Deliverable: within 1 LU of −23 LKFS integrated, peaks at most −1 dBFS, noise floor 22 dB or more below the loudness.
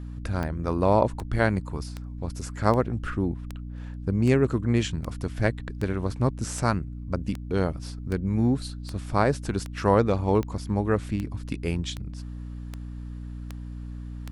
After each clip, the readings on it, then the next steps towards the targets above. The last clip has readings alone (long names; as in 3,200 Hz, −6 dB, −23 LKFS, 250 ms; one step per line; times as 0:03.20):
number of clicks 19; mains hum 60 Hz; hum harmonics up to 300 Hz; level of the hum −34 dBFS; integrated loudness −27.0 LKFS; sample peak −6.0 dBFS; target loudness −23.0 LKFS
→ click removal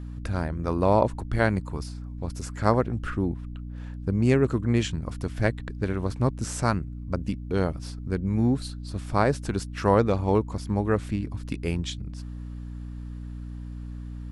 number of clicks 0; mains hum 60 Hz; hum harmonics up to 300 Hz; level of the hum −34 dBFS
→ mains-hum notches 60/120/180/240/300 Hz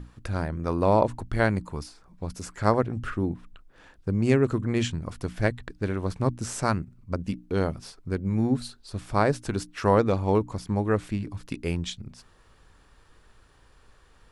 mains hum none found; integrated loudness −27.0 LKFS; sample peak −6.5 dBFS; target loudness −23.0 LKFS
→ level +4 dB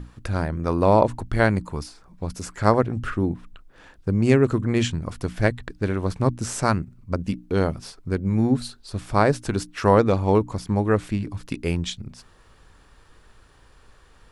integrated loudness −23.0 LKFS; sample peak −2.5 dBFS; background noise floor −54 dBFS